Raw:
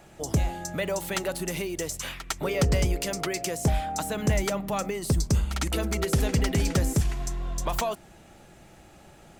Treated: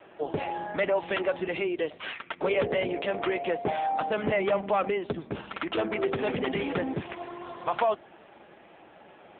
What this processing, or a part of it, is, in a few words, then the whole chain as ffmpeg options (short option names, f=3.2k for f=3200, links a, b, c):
telephone: -af "highpass=320,lowpass=3.6k,asoftclip=type=tanh:threshold=-20.5dB,volume=6.5dB" -ar 8000 -c:a libopencore_amrnb -b:a 5900